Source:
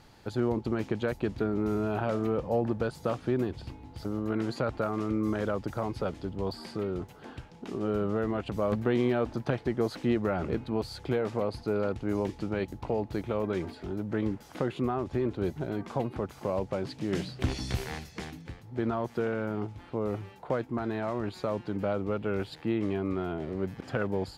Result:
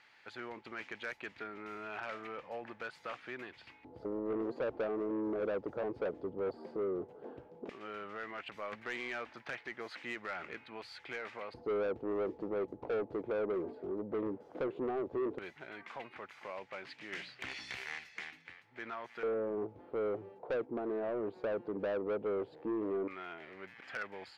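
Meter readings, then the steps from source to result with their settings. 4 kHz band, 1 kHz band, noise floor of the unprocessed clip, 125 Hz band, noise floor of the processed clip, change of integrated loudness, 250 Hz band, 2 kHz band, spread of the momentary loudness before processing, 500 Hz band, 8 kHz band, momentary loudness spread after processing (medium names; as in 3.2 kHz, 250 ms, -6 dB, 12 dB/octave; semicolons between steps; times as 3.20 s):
-6.5 dB, -7.5 dB, -51 dBFS, -21.5 dB, -61 dBFS, -7.5 dB, -11.0 dB, -1.5 dB, 6 LU, -6.0 dB, no reading, 12 LU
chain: LFO band-pass square 0.13 Hz 470–2100 Hz; saturation -35 dBFS, distortion -10 dB; trim +4.5 dB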